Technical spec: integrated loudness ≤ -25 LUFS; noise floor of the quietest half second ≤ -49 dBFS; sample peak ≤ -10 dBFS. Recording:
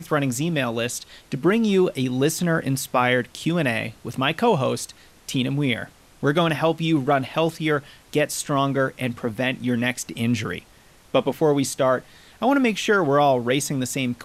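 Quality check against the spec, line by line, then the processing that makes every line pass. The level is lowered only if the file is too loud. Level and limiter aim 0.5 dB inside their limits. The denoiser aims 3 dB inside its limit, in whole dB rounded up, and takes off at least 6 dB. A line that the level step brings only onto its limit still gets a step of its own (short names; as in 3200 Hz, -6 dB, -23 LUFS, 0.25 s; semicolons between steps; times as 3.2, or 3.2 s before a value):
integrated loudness -22.5 LUFS: fail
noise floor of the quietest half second -52 dBFS: OK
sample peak -7.0 dBFS: fail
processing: gain -3 dB; limiter -10.5 dBFS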